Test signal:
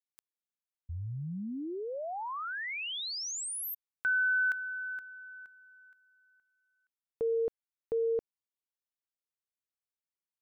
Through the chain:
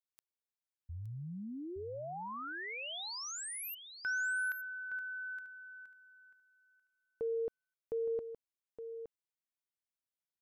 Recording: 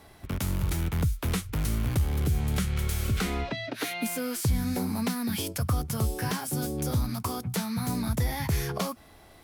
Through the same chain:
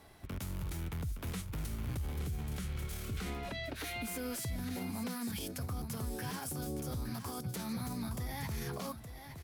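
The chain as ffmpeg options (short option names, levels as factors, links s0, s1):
-filter_complex "[0:a]alimiter=level_in=1.26:limit=0.0631:level=0:latency=1:release=32,volume=0.794,asplit=2[s0][s1];[s1]aecho=0:1:867:0.335[s2];[s0][s2]amix=inputs=2:normalize=0,volume=0.531"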